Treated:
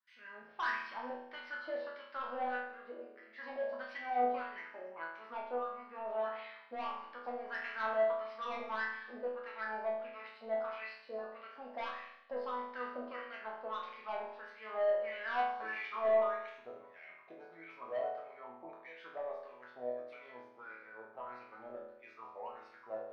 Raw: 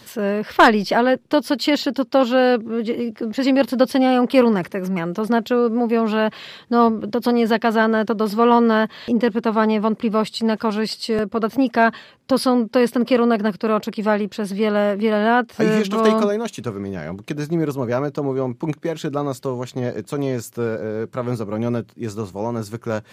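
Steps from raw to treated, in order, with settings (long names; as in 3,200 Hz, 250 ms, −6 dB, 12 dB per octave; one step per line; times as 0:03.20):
noise gate with hold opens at −32 dBFS
parametric band 550 Hz −10.5 dB 2.3 octaves, from 0:01.10 120 Hz
LFO wah 1.6 Hz 620–2,300 Hz, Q 5.3
flanger 0.75 Hz, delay 4.7 ms, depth 8.6 ms, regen −85%
soft clipping −28 dBFS, distortion −12 dB
Savitzky-Golay smoothing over 15 samples
resonators tuned to a chord E2 sus4, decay 0.83 s
level +15.5 dB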